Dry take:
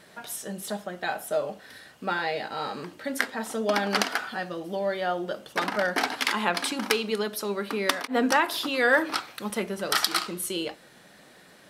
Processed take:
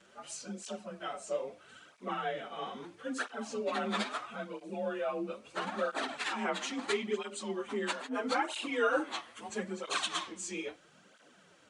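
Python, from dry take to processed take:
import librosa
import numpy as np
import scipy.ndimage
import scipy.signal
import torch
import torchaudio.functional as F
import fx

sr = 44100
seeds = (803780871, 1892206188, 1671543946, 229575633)

y = fx.partial_stretch(x, sr, pct=91)
y = fx.flanger_cancel(y, sr, hz=0.76, depth_ms=7.8)
y = y * 10.0 ** (-3.0 / 20.0)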